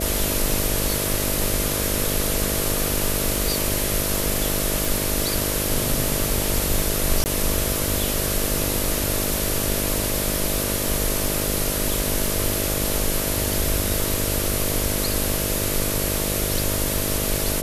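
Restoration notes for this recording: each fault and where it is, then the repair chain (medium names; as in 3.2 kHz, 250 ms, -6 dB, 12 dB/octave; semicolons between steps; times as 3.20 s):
buzz 50 Hz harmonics 13 -28 dBFS
4.85 s: pop
7.24–7.26 s: dropout 19 ms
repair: de-click; de-hum 50 Hz, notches 13; interpolate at 7.24 s, 19 ms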